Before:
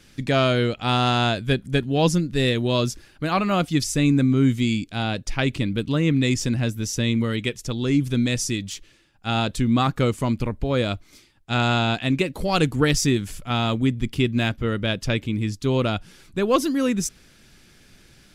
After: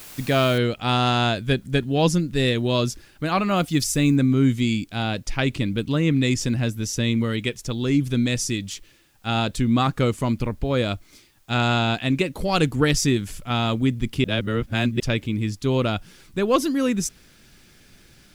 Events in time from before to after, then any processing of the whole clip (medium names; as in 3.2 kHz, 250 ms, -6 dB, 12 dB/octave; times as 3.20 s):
0.58 s: noise floor step -42 dB -65 dB
3.56–4.16 s: treble shelf 12 kHz +12 dB
14.24–15.00 s: reverse